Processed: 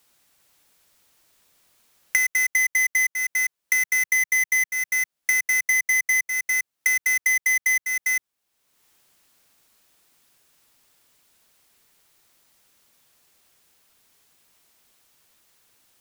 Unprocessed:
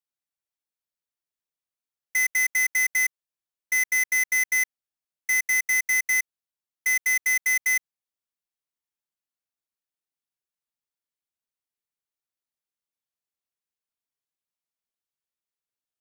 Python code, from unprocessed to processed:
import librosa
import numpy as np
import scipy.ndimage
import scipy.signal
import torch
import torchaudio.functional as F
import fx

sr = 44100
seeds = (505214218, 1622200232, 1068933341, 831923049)

y = x + 10.0 ** (-6.0 / 20.0) * np.pad(x, (int(401 * sr / 1000.0), 0))[:len(x)]
y = fx.band_squash(y, sr, depth_pct=100)
y = y * librosa.db_to_amplitude(-1.0)